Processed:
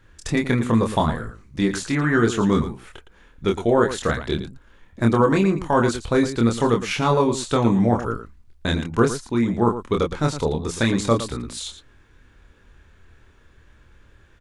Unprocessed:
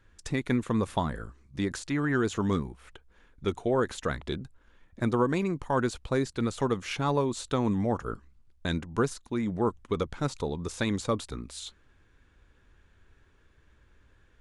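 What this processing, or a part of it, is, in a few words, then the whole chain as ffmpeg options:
slapback doubling: -filter_complex "[0:a]asplit=3[link_01][link_02][link_03];[link_02]adelay=26,volume=-3.5dB[link_04];[link_03]adelay=113,volume=-11dB[link_05];[link_01][link_04][link_05]amix=inputs=3:normalize=0,volume=7dB"

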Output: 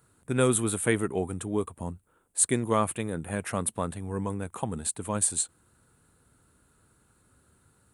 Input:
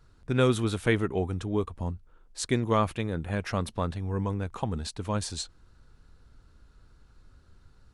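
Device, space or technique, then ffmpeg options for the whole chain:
budget condenser microphone: -af "highpass=120,highshelf=frequency=6900:width_type=q:width=3:gain=10.5"

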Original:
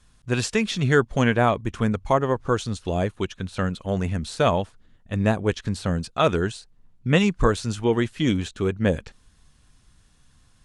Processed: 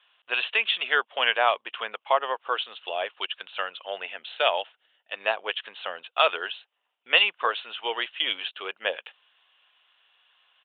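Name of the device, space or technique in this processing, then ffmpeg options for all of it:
musical greeting card: -filter_complex "[0:a]aresample=8000,aresample=44100,highpass=frequency=620:width=0.5412,highpass=frequency=620:width=1.3066,equalizer=frequency=2900:width_type=o:width=0.44:gain=12,asettb=1/sr,asplit=3[link_01][link_02][link_03];[link_01]atrim=end=3.884[link_04];[link_02]atrim=start=3.88:end=5.13,asetpts=PTS-STARTPTS,afade=type=in:duration=0.004:curve=qsin,afade=type=out:start_time=1.246:duration=0.004:curve=qsin,equalizer=frequency=1100:width_type=o:width=0.3:gain=-7[link_05];[link_03]atrim=start=5.126[link_06];[link_04][link_05]acrossfade=duration=0.004:curve1=hsin:curve2=qsin[link_07];[link_07][link_06]acrossfade=duration=0.004:curve1=qsin:curve2=hsin"

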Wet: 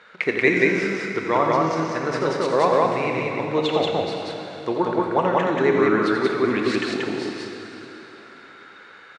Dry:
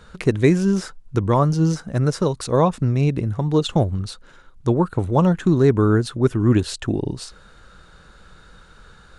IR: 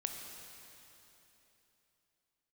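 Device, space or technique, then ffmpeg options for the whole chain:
station announcement: -filter_complex "[0:a]highpass=390,lowpass=4100,equalizer=frequency=2100:width_type=o:width=0.56:gain=12,aecho=1:1:84.55|183.7:0.355|0.891[link_01];[1:a]atrim=start_sample=2205[link_02];[link_01][link_02]afir=irnorm=-1:irlink=0"

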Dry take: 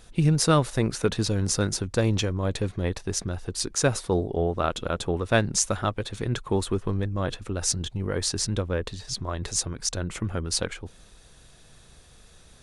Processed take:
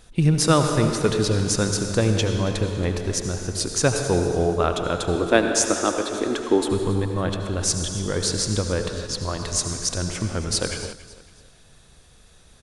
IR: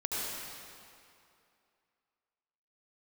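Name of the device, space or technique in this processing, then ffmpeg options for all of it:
keyed gated reverb: -filter_complex "[0:a]asettb=1/sr,asplit=3[link_01][link_02][link_03];[link_01]atrim=end=5.154[link_04];[link_02]atrim=start=5.15:end=6.71,asetpts=PTS-STARTPTS,afade=type=in:duration=0.004:curve=qsin,afade=type=out:start_time=1.556:duration=0.004:curve=qsin,lowshelf=frequency=200:width_type=q:width=3:gain=-13[link_05];[link_03]atrim=start=6.706[link_06];[link_04][link_05]acrossfade=duration=0.004:curve1=hsin:curve2=qsin[link_07];[link_07][link_06]acrossfade=duration=0.004:curve1=qsin:curve2=hsin,asplit=3[link_08][link_09][link_10];[1:a]atrim=start_sample=2205[link_11];[link_09][link_11]afir=irnorm=-1:irlink=0[link_12];[link_10]apad=whole_len=556693[link_13];[link_12][link_13]sidechaingate=range=-33dB:threshold=-41dB:ratio=16:detection=peak,volume=-7.5dB[link_14];[link_08][link_14]amix=inputs=2:normalize=0,aecho=1:1:278|556|834:0.15|0.0539|0.0194"

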